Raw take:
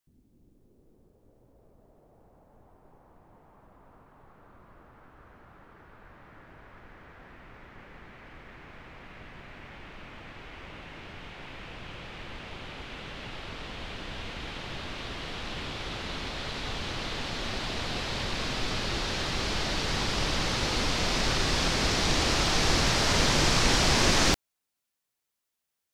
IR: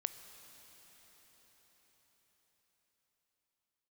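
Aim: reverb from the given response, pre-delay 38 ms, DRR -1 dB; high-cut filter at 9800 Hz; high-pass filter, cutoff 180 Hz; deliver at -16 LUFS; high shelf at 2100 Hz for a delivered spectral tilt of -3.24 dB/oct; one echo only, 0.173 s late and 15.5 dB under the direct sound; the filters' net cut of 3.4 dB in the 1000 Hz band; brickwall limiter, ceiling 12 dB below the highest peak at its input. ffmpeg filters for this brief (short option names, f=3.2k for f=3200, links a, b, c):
-filter_complex "[0:a]highpass=180,lowpass=9.8k,equalizer=f=1k:t=o:g=-3,highshelf=f=2.1k:g=-6,alimiter=level_in=3dB:limit=-24dB:level=0:latency=1,volume=-3dB,aecho=1:1:173:0.168,asplit=2[a][b];[1:a]atrim=start_sample=2205,adelay=38[c];[b][c]afir=irnorm=-1:irlink=0,volume=1.5dB[d];[a][d]amix=inputs=2:normalize=0,volume=18dB"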